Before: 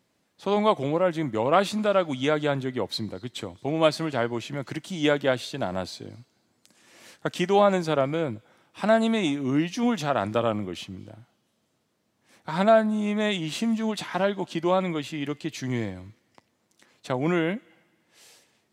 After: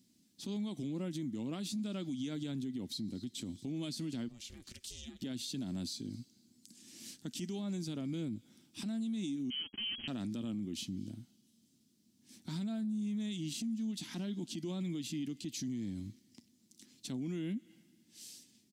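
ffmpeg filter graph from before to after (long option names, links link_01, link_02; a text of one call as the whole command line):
ffmpeg -i in.wav -filter_complex "[0:a]asettb=1/sr,asplit=3[link_01][link_02][link_03];[link_01]atrim=end=4.284[link_04];[link_02]atrim=start=4.28:end=5.22,asetpts=PTS-STARTPTS,afade=type=in:duration=0.004:curve=qsin,afade=type=out:start_time=0.936:duration=0.004:curve=qsin,highpass=frequency=660:poles=1,acompressor=threshold=-39dB:ratio=12:attack=3.2:release=140:knee=1:detection=peak,aeval=exprs='val(0)*sin(2*PI*230*n/s)':channel_layout=same[link_05];[link_03]atrim=start=5.216[link_06];[link_04][link_05]acrossfade=duration=0.004:curve1=hsin:curve2=qsin[link_07];[link_07][link_06]acrossfade=duration=0.004:curve1=qsin:curve2=hsin,asettb=1/sr,asplit=3[link_08][link_09][link_10];[link_08]atrim=end=9.504[link_11];[link_09]atrim=start=9.5:end=10.08,asetpts=PTS-STARTPTS,afade=type=in:duration=0.004:curve=qsin,afade=type=out:start_time=0.576:duration=0.004:curve=qsin,aemphasis=mode=production:type=50fm,acrusher=bits=3:mix=0:aa=0.5,lowpass=frequency=2800:width_type=q:width=0.5098,lowpass=frequency=2800:width_type=q:width=0.6013,lowpass=frequency=2800:width_type=q:width=0.9,lowpass=frequency=2800:width_type=q:width=2.563,afreqshift=-3300[link_12];[link_10]atrim=start=10.076[link_13];[link_11][link_12]acrossfade=duration=0.004:curve1=hsin:curve2=qsin[link_14];[link_14][link_13]acrossfade=duration=0.004:curve1=qsin:curve2=hsin,firequalizer=gain_entry='entry(130,0);entry(240,10);entry(490,-16);entry(1100,-18);entry(3100,-1);entry(5000,6)':delay=0.05:min_phase=1,acompressor=threshold=-30dB:ratio=6,alimiter=level_in=6dB:limit=-24dB:level=0:latency=1:release=59,volume=-6dB,volume=-2dB" out.wav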